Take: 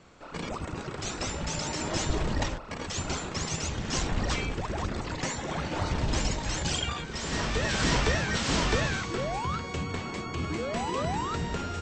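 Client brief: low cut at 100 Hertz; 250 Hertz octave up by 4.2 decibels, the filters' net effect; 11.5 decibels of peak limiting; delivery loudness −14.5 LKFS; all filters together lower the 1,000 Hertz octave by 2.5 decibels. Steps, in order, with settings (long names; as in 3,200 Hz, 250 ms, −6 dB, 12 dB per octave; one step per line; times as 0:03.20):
high-pass filter 100 Hz
parametric band 250 Hz +6 dB
parametric band 1,000 Hz −3.5 dB
level +19 dB
brickwall limiter −5 dBFS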